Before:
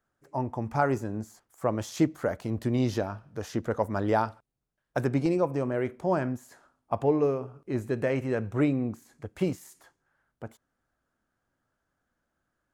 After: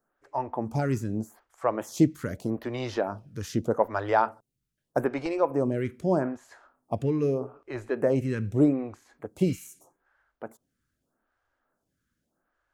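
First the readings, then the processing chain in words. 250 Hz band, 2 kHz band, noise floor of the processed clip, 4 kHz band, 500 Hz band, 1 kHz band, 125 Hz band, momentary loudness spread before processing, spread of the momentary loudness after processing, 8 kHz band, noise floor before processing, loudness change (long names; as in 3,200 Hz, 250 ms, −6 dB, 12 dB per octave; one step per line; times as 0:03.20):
+1.0 dB, −0.5 dB, −81 dBFS, 0.0 dB, +1.0 dB, +1.5 dB, +0.5 dB, 12 LU, 15 LU, can't be measured, −81 dBFS, +1.0 dB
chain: healed spectral selection 0:09.50–0:09.94, 1,300–5,400 Hz both
phaser with staggered stages 0.81 Hz
level +4.5 dB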